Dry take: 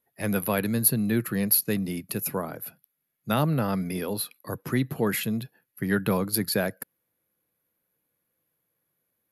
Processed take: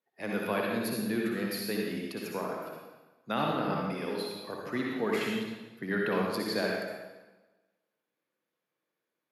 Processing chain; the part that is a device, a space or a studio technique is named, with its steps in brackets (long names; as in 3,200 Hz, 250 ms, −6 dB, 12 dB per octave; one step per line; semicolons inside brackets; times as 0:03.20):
supermarket ceiling speaker (band-pass filter 250–5,200 Hz; convolution reverb RT60 1.2 s, pre-delay 53 ms, DRR −2 dB)
level −5.5 dB